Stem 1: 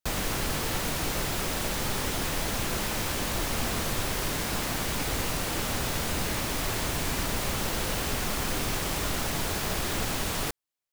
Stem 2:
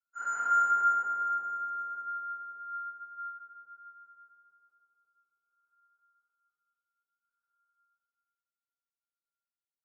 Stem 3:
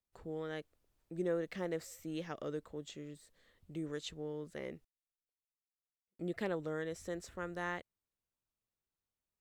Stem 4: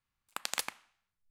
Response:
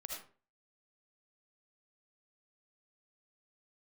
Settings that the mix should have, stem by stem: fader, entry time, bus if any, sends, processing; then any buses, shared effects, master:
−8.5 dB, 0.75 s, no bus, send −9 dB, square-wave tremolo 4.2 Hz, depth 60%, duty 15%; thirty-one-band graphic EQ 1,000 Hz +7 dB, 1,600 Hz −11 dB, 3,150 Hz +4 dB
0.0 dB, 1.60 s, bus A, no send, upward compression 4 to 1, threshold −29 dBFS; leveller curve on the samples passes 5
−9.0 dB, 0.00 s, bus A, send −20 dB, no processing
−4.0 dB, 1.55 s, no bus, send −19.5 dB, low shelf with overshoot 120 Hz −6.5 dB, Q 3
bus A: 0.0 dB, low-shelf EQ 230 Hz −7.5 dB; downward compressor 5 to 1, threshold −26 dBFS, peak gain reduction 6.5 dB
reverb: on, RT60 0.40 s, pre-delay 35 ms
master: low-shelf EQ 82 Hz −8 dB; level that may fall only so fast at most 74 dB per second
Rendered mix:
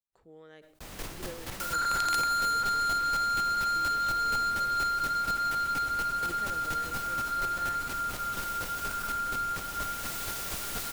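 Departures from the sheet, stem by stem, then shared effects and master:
stem 1: missing thirty-one-band graphic EQ 1,000 Hz +7 dB, 1,600 Hz −11 dB, 3,150 Hz +4 dB
stem 2 0.0 dB → −6.5 dB
master: missing low-shelf EQ 82 Hz −8 dB

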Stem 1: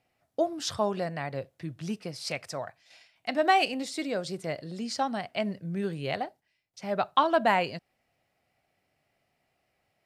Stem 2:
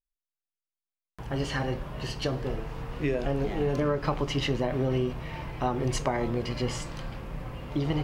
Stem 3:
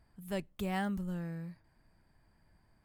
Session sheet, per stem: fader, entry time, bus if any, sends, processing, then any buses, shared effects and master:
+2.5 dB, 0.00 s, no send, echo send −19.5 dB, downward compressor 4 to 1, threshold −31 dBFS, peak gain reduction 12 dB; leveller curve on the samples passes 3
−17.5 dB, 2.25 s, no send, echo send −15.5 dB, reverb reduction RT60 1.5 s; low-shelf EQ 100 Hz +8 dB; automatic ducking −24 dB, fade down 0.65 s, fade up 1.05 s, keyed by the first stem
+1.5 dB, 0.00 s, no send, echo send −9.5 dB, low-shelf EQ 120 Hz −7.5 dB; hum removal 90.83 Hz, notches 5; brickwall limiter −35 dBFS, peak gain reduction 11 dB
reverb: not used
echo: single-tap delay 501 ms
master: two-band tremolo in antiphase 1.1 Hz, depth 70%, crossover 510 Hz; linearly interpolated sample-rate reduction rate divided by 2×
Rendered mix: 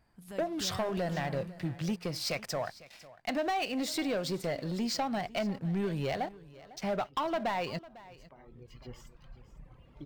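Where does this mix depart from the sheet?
stem 1 +2.5 dB → −6.5 dB
master: missing two-band tremolo in antiphase 1.1 Hz, depth 70%, crossover 510 Hz

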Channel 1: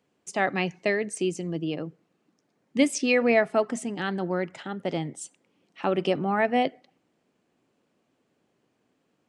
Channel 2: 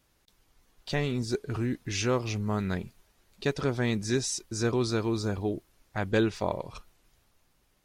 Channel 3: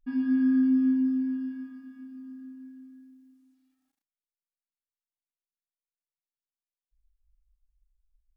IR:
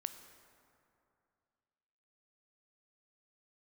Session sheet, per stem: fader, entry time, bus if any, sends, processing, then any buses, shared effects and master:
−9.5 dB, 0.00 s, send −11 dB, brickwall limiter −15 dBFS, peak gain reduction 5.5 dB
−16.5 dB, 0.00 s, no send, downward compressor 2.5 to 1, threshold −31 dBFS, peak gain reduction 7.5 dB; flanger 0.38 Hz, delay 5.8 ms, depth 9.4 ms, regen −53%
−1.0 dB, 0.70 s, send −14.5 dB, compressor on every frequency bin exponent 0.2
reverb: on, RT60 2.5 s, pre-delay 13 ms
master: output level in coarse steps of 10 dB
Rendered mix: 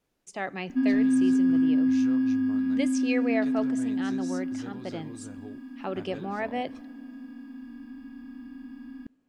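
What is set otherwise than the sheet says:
stem 1: missing brickwall limiter −15 dBFS, peak gain reduction 5.5 dB
stem 2 −16.5 dB → −8.0 dB
master: missing output level in coarse steps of 10 dB

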